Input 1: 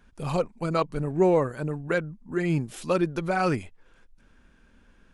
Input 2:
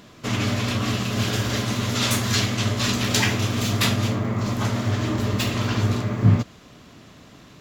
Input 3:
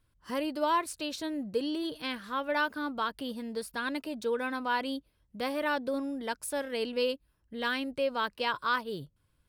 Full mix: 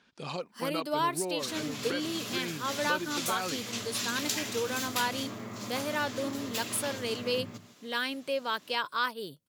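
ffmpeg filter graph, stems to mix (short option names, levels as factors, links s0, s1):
-filter_complex "[0:a]lowpass=f=4200:t=q:w=1.7,volume=0.631[s0];[1:a]adelay=1150,volume=0.251,asplit=2[s1][s2];[s2]volume=0.106[s3];[2:a]adelay=300,volume=0.794[s4];[s0][s1]amix=inputs=2:normalize=0,highshelf=f=7700:g=3.5,acompressor=threshold=0.0251:ratio=6,volume=1[s5];[s3]aecho=0:1:159:1[s6];[s4][s5][s6]amix=inputs=3:normalize=0,highpass=200,highshelf=f=3600:g=9"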